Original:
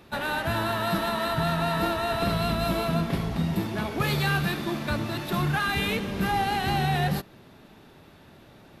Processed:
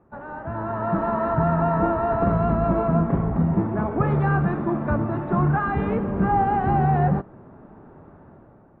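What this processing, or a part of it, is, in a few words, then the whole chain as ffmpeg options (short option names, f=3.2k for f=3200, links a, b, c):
action camera in a waterproof case: -af "lowpass=f=1.3k:w=0.5412,lowpass=f=1.3k:w=1.3066,dynaudnorm=f=220:g=7:m=12dB,volume=-5.5dB" -ar 44100 -c:a aac -b:a 48k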